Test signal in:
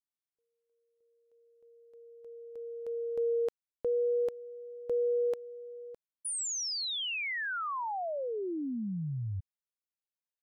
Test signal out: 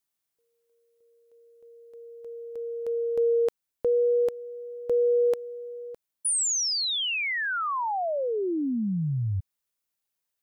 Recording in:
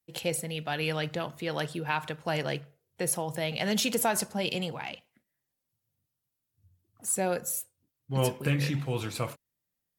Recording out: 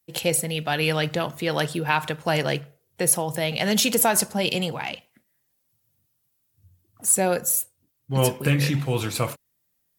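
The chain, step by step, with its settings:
high-shelf EQ 8,400 Hz +6 dB
in parallel at +0.5 dB: speech leveller within 4 dB 2 s

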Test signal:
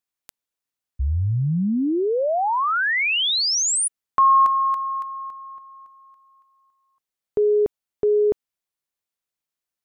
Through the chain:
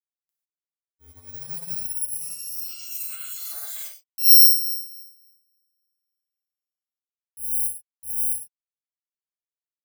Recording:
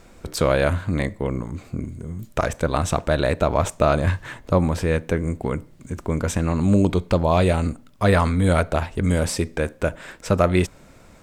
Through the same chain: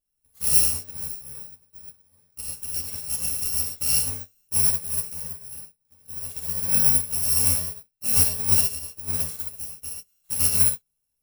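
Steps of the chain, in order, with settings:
samples in bit-reversed order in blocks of 128 samples
high-shelf EQ 6,000 Hz +11.5 dB
reverb whose tail is shaped and stops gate 170 ms flat, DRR −5 dB
expander for the loud parts 2.5 to 1, over −20 dBFS
level −13 dB

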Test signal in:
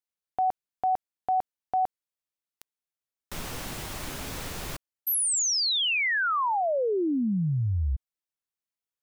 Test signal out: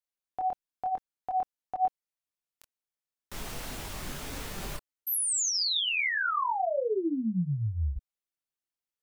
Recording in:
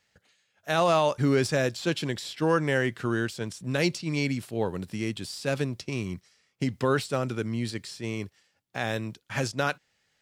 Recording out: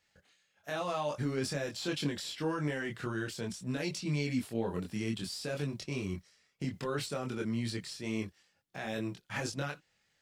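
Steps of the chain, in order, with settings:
brickwall limiter −21.5 dBFS
multi-voice chorus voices 6, 0.45 Hz, delay 24 ms, depth 3.6 ms

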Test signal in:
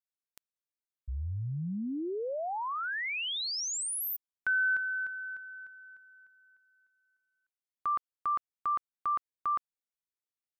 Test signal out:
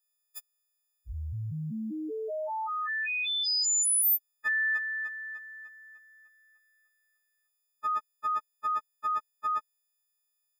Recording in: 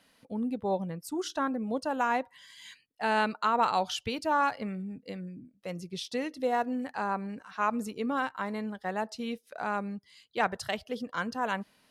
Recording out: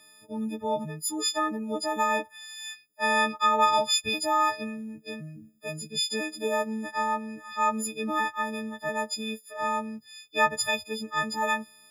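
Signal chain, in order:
every partial snapped to a pitch grid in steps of 6 semitones

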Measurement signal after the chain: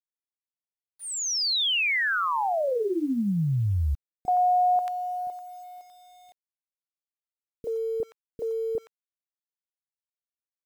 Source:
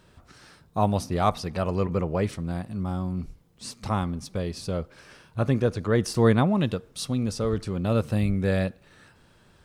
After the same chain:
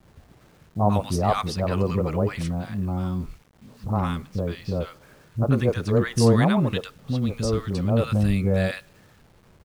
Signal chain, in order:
low-pass that shuts in the quiet parts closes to 580 Hz, open at −22 dBFS
three-band delay without the direct sound lows, mids, highs 30/120 ms, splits 330/1,100 Hz
bit reduction 10 bits
level +3.5 dB

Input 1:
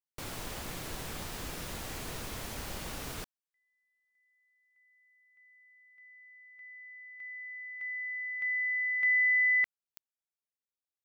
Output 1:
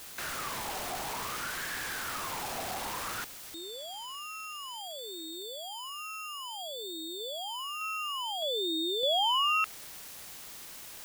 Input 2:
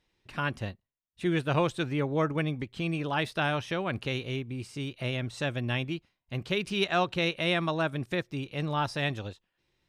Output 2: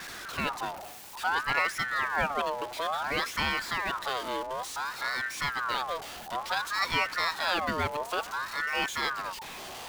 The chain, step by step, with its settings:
converter with a step at zero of −32.5 dBFS
ring modulator whose carrier an LFO sweeps 1,200 Hz, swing 40%, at 0.57 Hz

